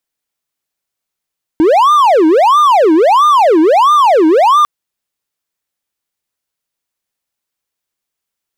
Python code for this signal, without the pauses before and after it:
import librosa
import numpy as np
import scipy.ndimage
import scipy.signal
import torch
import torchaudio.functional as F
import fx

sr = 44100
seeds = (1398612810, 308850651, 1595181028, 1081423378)

y = fx.siren(sr, length_s=3.05, kind='wail', low_hz=310.0, high_hz=1210.0, per_s=1.5, wave='triangle', level_db=-3.0)